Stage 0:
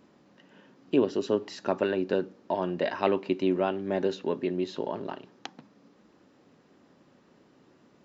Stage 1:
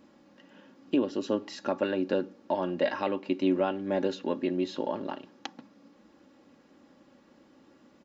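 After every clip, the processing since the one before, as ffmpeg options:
ffmpeg -i in.wav -af "aecho=1:1:3.6:0.51,alimiter=limit=-15.5dB:level=0:latency=1:release=487" out.wav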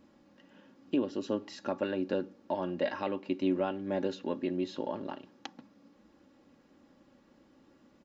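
ffmpeg -i in.wav -af "lowshelf=frequency=92:gain=10.5,volume=-4.5dB" out.wav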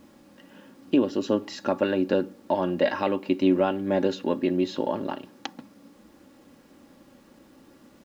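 ffmpeg -i in.wav -af "acrusher=bits=11:mix=0:aa=0.000001,volume=8.5dB" out.wav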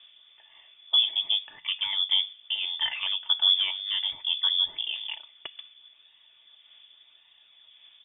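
ffmpeg -i in.wav -af "aphaser=in_gain=1:out_gain=1:delay=1.1:decay=0.34:speed=0.89:type=sinusoidal,lowpass=frequency=3100:width_type=q:width=0.5098,lowpass=frequency=3100:width_type=q:width=0.6013,lowpass=frequency=3100:width_type=q:width=0.9,lowpass=frequency=3100:width_type=q:width=2.563,afreqshift=-3700,volume=-4.5dB" out.wav

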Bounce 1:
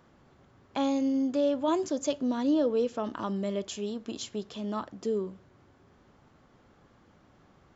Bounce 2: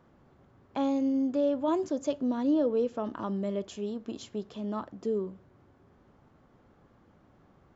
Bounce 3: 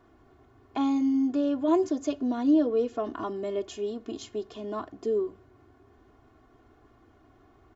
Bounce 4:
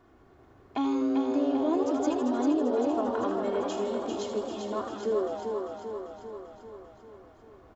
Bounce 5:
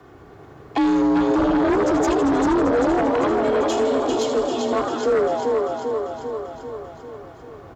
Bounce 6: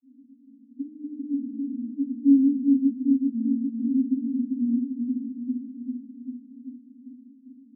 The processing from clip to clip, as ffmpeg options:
ffmpeg -i in.wav -af "highshelf=frequency=2000:gain=-9.5" out.wav
ffmpeg -i in.wav -af "aecho=1:1:2.8:0.99" out.wav
ffmpeg -i in.wav -filter_complex "[0:a]asplit=2[link_01][link_02];[link_02]asplit=8[link_03][link_04][link_05][link_06][link_07][link_08][link_09][link_10];[link_03]adelay=80,afreqshift=120,volume=-9dB[link_11];[link_04]adelay=160,afreqshift=240,volume=-13dB[link_12];[link_05]adelay=240,afreqshift=360,volume=-17dB[link_13];[link_06]adelay=320,afreqshift=480,volume=-21dB[link_14];[link_07]adelay=400,afreqshift=600,volume=-25.1dB[link_15];[link_08]adelay=480,afreqshift=720,volume=-29.1dB[link_16];[link_09]adelay=560,afreqshift=840,volume=-33.1dB[link_17];[link_10]adelay=640,afreqshift=960,volume=-37.1dB[link_18];[link_11][link_12][link_13][link_14][link_15][link_16][link_17][link_18]amix=inputs=8:normalize=0[link_19];[link_01][link_19]amix=inputs=2:normalize=0,acompressor=threshold=-24dB:ratio=6,asplit=2[link_20][link_21];[link_21]aecho=0:1:394|788|1182|1576|1970|2364|2758|3152:0.562|0.337|0.202|0.121|0.0729|0.0437|0.0262|0.0157[link_22];[link_20][link_22]amix=inputs=2:normalize=0" out.wav
ffmpeg -i in.wav -filter_complex "[0:a]acrossover=split=470|3000[link_01][link_02][link_03];[link_02]acompressor=threshold=-32dB:ratio=2[link_04];[link_01][link_04][link_03]amix=inputs=3:normalize=0,aeval=exprs='0.178*sin(PI/2*2.82*val(0)/0.178)':channel_layout=same,afreqshift=30" out.wav
ffmpeg -i in.wav -af "asuperpass=centerf=250:order=20:qfactor=3.7,volume=5dB" out.wav

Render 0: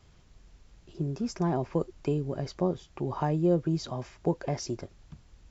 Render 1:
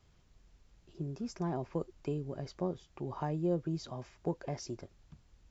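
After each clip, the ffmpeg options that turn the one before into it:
ffmpeg -i in.wav -af "aeval=exprs='0.211*(cos(1*acos(clip(val(0)/0.211,-1,1)))-cos(1*PI/2))+0.00422*(cos(3*acos(clip(val(0)/0.211,-1,1)))-cos(3*PI/2))':channel_layout=same,volume=-7dB" out.wav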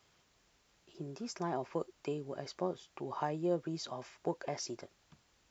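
ffmpeg -i in.wav -af "highpass=frequency=620:poles=1,volume=5dB" out.wav

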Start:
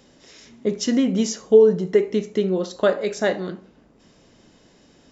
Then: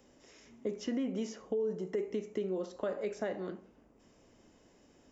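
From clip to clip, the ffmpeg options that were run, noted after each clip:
ffmpeg -i in.wav -filter_complex "[0:a]alimiter=limit=-12.5dB:level=0:latency=1:release=14,acrossover=split=240|4400[link_01][link_02][link_03];[link_01]acompressor=threshold=-34dB:ratio=4[link_04];[link_02]acompressor=threshold=-25dB:ratio=4[link_05];[link_03]acompressor=threshold=-53dB:ratio=4[link_06];[link_04][link_05][link_06]amix=inputs=3:normalize=0,equalizer=frequency=160:width_type=o:width=0.67:gain=-6,equalizer=frequency=1600:width_type=o:width=0.67:gain=-3,equalizer=frequency=4000:width_type=o:width=0.67:gain=-10,volume=-7.5dB" out.wav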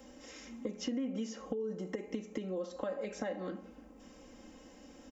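ffmpeg -i in.wav -af "aecho=1:1:3.8:0.87,acompressor=threshold=-43dB:ratio=3,volume=5.5dB" out.wav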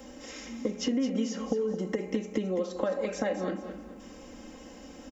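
ffmpeg -i in.wav -af "aecho=1:1:216|432|648|864:0.316|0.104|0.0344|0.0114,volume=7.5dB" out.wav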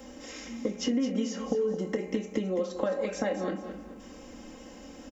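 ffmpeg -i in.wav -filter_complex "[0:a]asplit=2[link_01][link_02];[link_02]adelay=25,volume=-11dB[link_03];[link_01][link_03]amix=inputs=2:normalize=0" out.wav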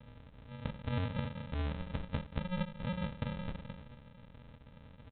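ffmpeg -i in.wav -af "asuperstop=centerf=1500:order=8:qfactor=0.62,aresample=8000,acrusher=samples=22:mix=1:aa=0.000001,aresample=44100,volume=-7dB" out.wav

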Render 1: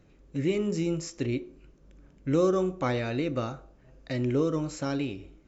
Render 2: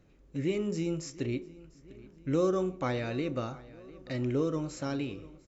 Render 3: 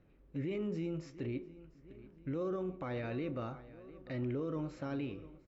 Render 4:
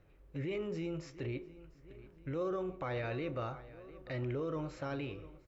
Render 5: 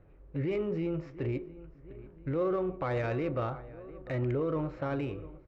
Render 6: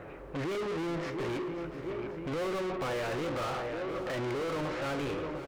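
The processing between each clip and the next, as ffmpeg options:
ffmpeg -i in.wav -filter_complex "[0:a]asplit=2[link_01][link_02];[link_02]adelay=698,lowpass=frequency=4800:poles=1,volume=-20dB,asplit=2[link_03][link_04];[link_04]adelay=698,lowpass=frequency=4800:poles=1,volume=0.54,asplit=2[link_05][link_06];[link_06]adelay=698,lowpass=frequency=4800:poles=1,volume=0.54,asplit=2[link_07][link_08];[link_08]adelay=698,lowpass=frequency=4800:poles=1,volume=0.54[link_09];[link_01][link_03][link_05][link_07][link_09]amix=inputs=5:normalize=0,volume=-3.5dB" out.wav
ffmpeg -i in.wav -af "lowpass=2800,alimiter=level_in=3dB:limit=-24dB:level=0:latency=1:release=10,volume=-3dB,volume=-3.5dB" out.wav
ffmpeg -i in.wav -af "equalizer=frequency=230:width_type=o:width=0.96:gain=-11,volume=4dB" out.wav
ffmpeg -i in.wav -af "adynamicsmooth=sensitivity=4:basefreq=1800,volume=6.5dB" out.wav
ffmpeg -i in.wav -filter_complex "[0:a]asplit=2[link_01][link_02];[link_02]highpass=frequency=720:poles=1,volume=38dB,asoftclip=type=tanh:threshold=-21dB[link_03];[link_01][link_03]amix=inputs=2:normalize=0,lowpass=frequency=4200:poles=1,volume=-6dB,aecho=1:1:533|1066|1599|2132|2665:0.211|0.104|0.0507|0.0249|0.0122,volume=-7dB" out.wav

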